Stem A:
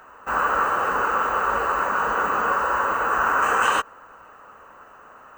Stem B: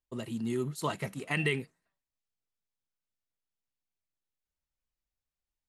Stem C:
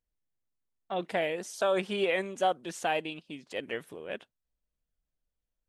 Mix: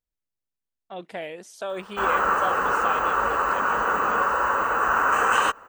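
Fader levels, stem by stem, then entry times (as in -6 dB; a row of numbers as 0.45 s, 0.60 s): -0.5 dB, mute, -4.0 dB; 1.70 s, mute, 0.00 s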